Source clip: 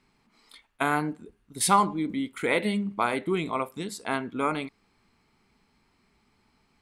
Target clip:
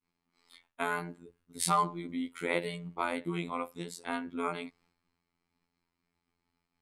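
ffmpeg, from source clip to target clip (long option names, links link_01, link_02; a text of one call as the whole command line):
ffmpeg -i in.wav -af "agate=range=-33dB:threshold=-59dB:ratio=3:detection=peak,afftfilt=real='hypot(re,im)*cos(PI*b)':imag='0':win_size=2048:overlap=0.75,volume=-3dB" out.wav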